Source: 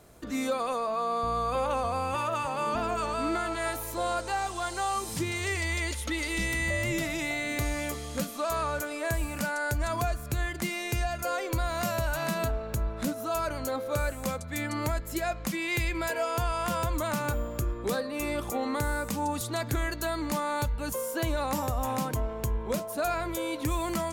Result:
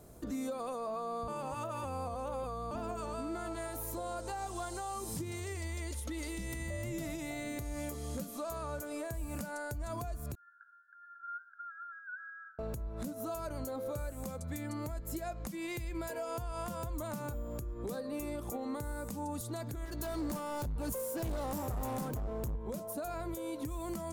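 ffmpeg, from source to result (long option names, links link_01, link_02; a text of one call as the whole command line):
ffmpeg -i in.wav -filter_complex "[0:a]asettb=1/sr,asplit=3[link_01][link_02][link_03];[link_01]atrim=end=10.354[link_04];[link_02]atrim=start=10.35:end=12.59,asetpts=PTS-STARTPTS,afade=type=in:duration=0.004:curve=qsin,afade=type=out:start_time=2.236:duration=0.004:curve=qsin,asuperpass=centerf=1500:order=20:qfactor=4.3[link_05];[link_03]atrim=start=12.586[link_06];[link_04][link_05]acrossfade=duration=0.004:curve1=hsin:curve2=qsin[link_07];[link_07][link_06]acrossfade=duration=0.004:curve1=qsin:curve2=hsin,asettb=1/sr,asplit=3[link_08][link_09][link_10];[link_08]atrim=end=19.854[link_11];[link_09]atrim=start=19.85:end=22.55,asetpts=PTS-STARTPTS,afade=type=in:duration=0.004:curve=qsin,afade=type=out:start_time=2.696:duration=0.004:curve=qsin,asoftclip=type=hard:threshold=-32dB[link_12];[link_10]atrim=start=22.546[link_13];[link_11][link_12]acrossfade=duration=0.004:curve1=hsin:curve2=qsin[link_14];[link_14][link_13]acrossfade=duration=0.004:curve1=qsin:curve2=hsin,asplit=3[link_15][link_16][link_17];[link_15]atrim=end=1.282[link_18];[link_16]atrim=start=1.278:end=2.712,asetpts=PTS-STARTPTS,areverse[link_19];[link_17]atrim=start=2.708[link_20];[link_18][link_19]acrossfade=duration=0.004:curve1=hsin:curve2=hsin[link_21];[link_21][link_20]acrossfade=duration=0.004:curve1=hsin:curve2=hsin,equalizer=frequency=2400:width_type=o:width=2.6:gain=-11,acompressor=threshold=-33dB:ratio=6,alimiter=level_in=8dB:limit=-24dB:level=0:latency=1:release=294,volume=-8dB,volume=2dB" out.wav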